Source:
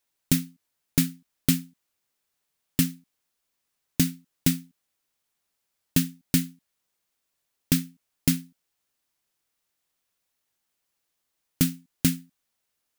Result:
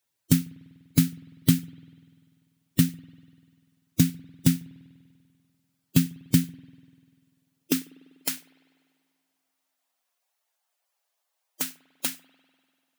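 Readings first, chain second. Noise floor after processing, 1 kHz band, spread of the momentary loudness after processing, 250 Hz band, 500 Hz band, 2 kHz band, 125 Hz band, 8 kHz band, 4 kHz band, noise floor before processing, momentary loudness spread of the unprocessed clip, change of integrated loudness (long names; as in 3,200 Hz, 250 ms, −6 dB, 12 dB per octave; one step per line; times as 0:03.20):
−80 dBFS, +2.0 dB, 10 LU, +1.0 dB, +0.5 dB, −1.5 dB, +2.5 dB, −2.0 dB, −2.0 dB, −80 dBFS, 6 LU, 0.0 dB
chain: spectral magnitudes quantised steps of 15 dB
high-pass filter sweep 110 Hz → 690 Hz, 0:07.01–0:08.13
spring reverb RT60 2.1 s, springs 49 ms, chirp 55 ms, DRR 20 dB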